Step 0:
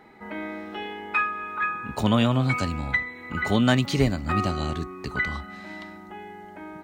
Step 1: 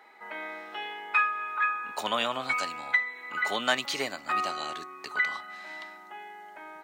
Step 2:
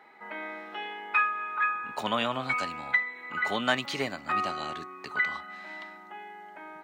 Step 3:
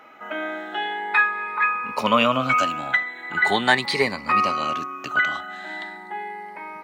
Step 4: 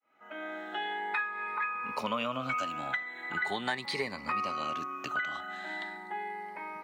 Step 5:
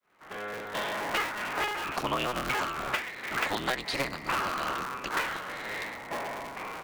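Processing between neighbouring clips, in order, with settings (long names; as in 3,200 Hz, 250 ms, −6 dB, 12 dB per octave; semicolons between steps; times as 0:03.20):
high-pass filter 710 Hz 12 dB per octave
bass and treble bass +10 dB, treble −7 dB
rippled gain that drifts along the octave scale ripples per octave 0.89, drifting +0.41 Hz, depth 11 dB; level +7.5 dB
fade in at the beginning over 0.88 s; downward compressor 3 to 1, threshold −27 dBFS, peak gain reduction 11.5 dB; level −5 dB
sub-harmonics by changed cycles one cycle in 3, inverted; level +2.5 dB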